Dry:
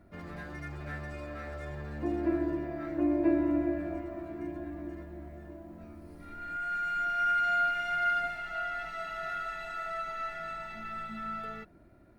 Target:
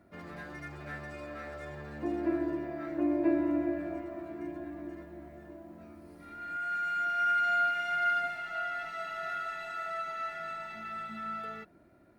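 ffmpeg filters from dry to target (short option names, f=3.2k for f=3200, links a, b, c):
-af "highpass=f=180:p=1"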